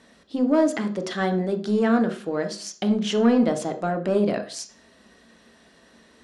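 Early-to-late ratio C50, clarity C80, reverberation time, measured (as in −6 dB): 11.5 dB, 16.0 dB, 0.45 s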